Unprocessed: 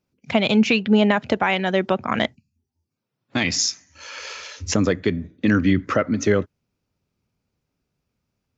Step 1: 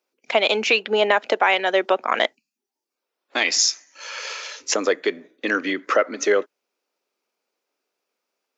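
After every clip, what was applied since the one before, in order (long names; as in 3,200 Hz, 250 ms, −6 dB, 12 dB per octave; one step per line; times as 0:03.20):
high-pass filter 390 Hz 24 dB per octave
level +3 dB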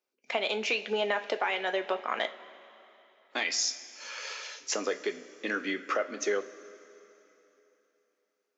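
downward compressor 2 to 1, threshold −20 dBFS, peak gain reduction 4.5 dB
coupled-rooms reverb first 0.25 s, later 3.2 s, from −18 dB, DRR 6.5 dB
level −8.5 dB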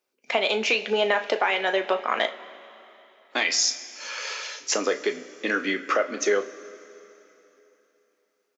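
double-tracking delay 36 ms −14 dB
level +6.5 dB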